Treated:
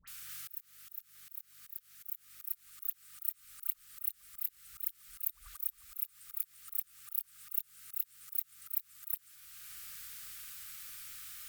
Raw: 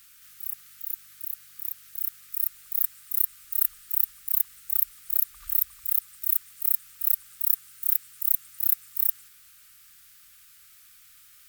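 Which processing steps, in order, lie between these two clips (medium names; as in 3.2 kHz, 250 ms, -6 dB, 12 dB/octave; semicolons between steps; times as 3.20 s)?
phase dispersion highs, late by 77 ms, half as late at 1.4 kHz; slow attack 618 ms; trim +6 dB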